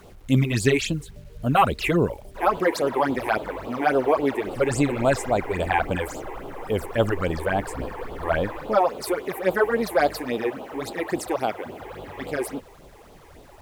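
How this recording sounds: phasing stages 8, 3.6 Hz, lowest notch 170–1900 Hz; a quantiser's noise floor 10-bit, dither none

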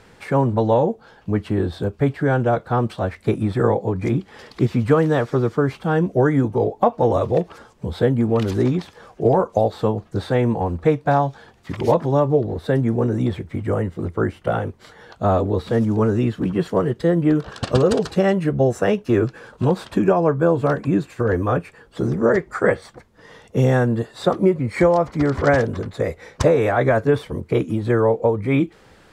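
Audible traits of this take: noise floor -51 dBFS; spectral tilt -5.5 dB/oct

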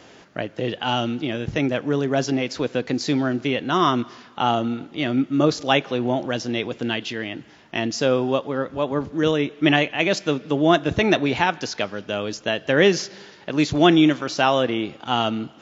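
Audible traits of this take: noise floor -48 dBFS; spectral tilt -4.0 dB/oct

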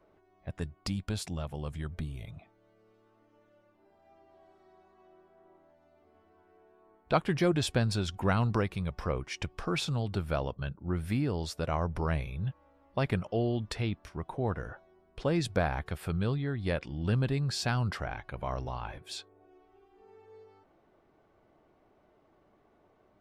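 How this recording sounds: noise floor -67 dBFS; spectral tilt -5.5 dB/oct

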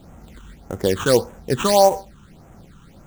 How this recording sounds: aliases and images of a low sample rate 5200 Hz, jitter 20%; phasing stages 8, 1.7 Hz, lowest notch 600–4400 Hz

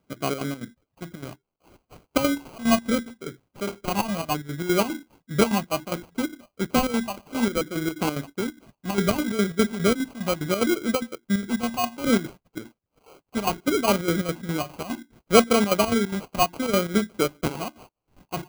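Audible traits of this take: phasing stages 8, 0.66 Hz, lowest notch 420–2000 Hz; chopped level 4.9 Hz, depth 65%, duty 65%; aliases and images of a low sample rate 1800 Hz, jitter 0%

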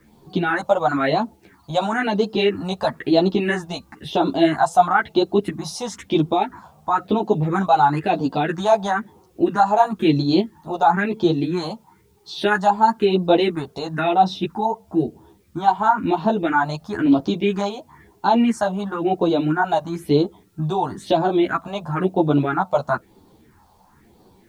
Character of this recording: phasing stages 4, 1 Hz, lowest notch 300–2000 Hz; a quantiser's noise floor 12-bit, dither triangular; a shimmering, thickened sound

